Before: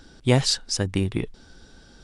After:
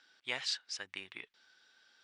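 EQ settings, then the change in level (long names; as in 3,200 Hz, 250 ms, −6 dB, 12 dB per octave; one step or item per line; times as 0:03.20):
resonant band-pass 2,100 Hz, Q 1.1
high-frequency loss of the air 55 metres
spectral tilt +2.5 dB per octave
−8.5 dB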